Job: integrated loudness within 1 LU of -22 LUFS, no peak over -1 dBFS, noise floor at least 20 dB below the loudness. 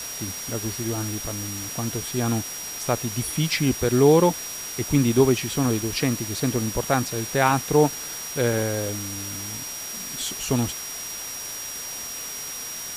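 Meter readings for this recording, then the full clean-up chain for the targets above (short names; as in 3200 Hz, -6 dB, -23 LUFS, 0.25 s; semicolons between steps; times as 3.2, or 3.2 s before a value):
steady tone 5700 Hz; tone level -34 dBFS; noise floor -34 dBFS; noise floor target -45 dBFS; loudness -24.5 LUFS; peak -5.5 dBFS; loudness target -22.0 LUFS
-> notch 5700 Hz, Q 30; noise print and reduce 11 dB; gain +2.5 dB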